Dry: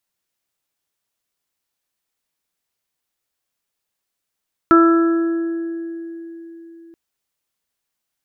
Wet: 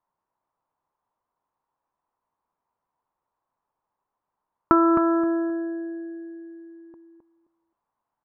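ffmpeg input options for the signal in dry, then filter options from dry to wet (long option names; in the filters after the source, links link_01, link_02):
-f lavfi -i "aevalsrc='0.376*pow(10,-3*t/4.13)*sin(2*PI*333*t)+0.075*pow(10,-3*t/1.97)*sin(2*PI*666*t)+0.0422*pow(10,-3*t/1.41)*sin(2*PI*999*t)+0.335*pow(10,-3*t/1.3)*sin(2*PI*1332*t)+0.0473*pow(10,-3*t/3.06)*sin(2*PI*1665*t)':duration=2.23:sample_rate=44100"
-af "lowpass=frequency=980:width_type=q:width=4.9,acompressor=threshold=-15dB:ratio=4,aecho=1:1:263|526|789:0.398|0.0796|0.0159"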